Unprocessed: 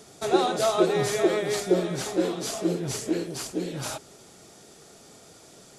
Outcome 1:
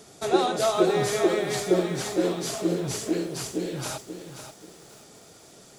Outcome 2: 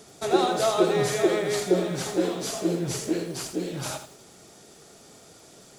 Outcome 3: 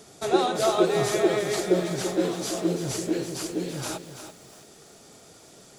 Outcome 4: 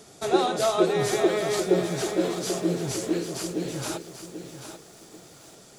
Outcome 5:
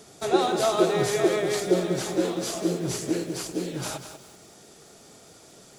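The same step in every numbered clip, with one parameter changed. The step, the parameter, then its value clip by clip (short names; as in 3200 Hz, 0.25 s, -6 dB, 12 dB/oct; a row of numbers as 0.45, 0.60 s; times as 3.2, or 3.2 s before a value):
lo-fi delay, time: 533, 82, 334, 788, 192 ms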